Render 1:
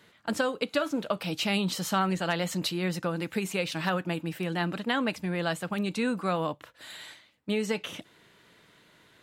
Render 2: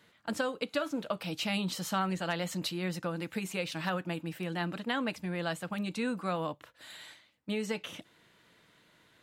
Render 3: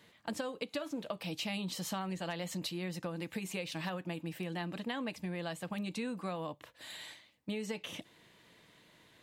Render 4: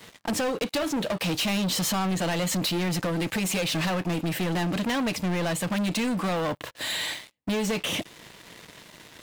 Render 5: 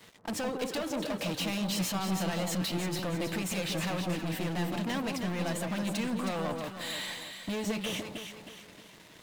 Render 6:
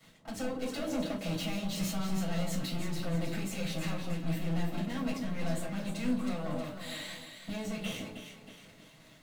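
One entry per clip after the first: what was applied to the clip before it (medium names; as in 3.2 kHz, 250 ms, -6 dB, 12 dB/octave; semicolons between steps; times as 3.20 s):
band-stop 400 Hz, Q 12; trim -4.5 dB
peaking EQ 1.4 kHz -8.5 dB 0.27 oct; compression 3:1, threshold -39 dBFS, peak gain reduction 9.5 dB; trim +2 dB
waveshaping leveller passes 5; trim +1 dB
echo whose repeats swap between lows and highs 158 ms, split 1.1 kHz, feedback 64%, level -3 dB; trim -7.5 dB
reverberation RT60 0.30 s, pre-delay 6 ms, DRR -2.5 dB; random flutter of the level, depth 60%; trim -8 dB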